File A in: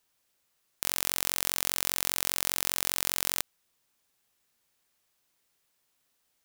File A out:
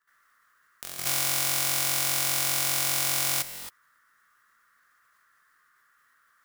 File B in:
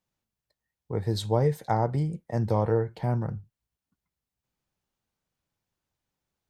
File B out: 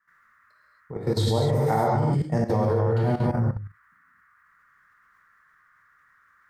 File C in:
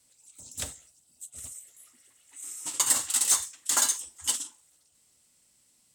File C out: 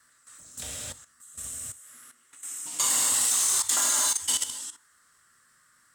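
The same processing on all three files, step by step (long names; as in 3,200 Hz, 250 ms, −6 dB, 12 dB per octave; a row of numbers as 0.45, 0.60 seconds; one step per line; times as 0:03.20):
noise in a band 1,100–1,900 Hz −67 dBFS
reverb whose tail is shaped and stops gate 300 ms flat, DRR −5 dB
output level in coarse steps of 13 dB
loudness normalisation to −24 LKFS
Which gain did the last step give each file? −0.5, +4.5, +2.0 decibels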